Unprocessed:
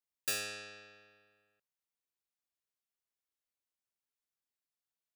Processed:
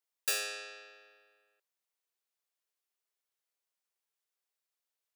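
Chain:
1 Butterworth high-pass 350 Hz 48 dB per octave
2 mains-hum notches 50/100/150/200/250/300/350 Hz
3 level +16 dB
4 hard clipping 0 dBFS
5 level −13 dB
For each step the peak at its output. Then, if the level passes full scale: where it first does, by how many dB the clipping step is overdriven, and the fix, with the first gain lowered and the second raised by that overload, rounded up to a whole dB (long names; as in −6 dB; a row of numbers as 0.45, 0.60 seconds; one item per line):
−21.0, −21.0, −5.0, −5.0, −18.0 dBFS
no step passes full scale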